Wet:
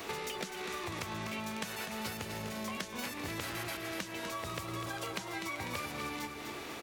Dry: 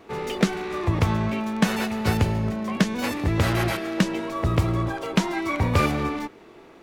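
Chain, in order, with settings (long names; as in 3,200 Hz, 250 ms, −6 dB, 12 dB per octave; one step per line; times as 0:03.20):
spectral tilt +3 dB per octave
downward compressor, threshold −38 dBFS, peak gain reduction 19.5 dB
repeating echo 248 ms, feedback 51%, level −9 dB
multiband upward and downward compressor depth 70%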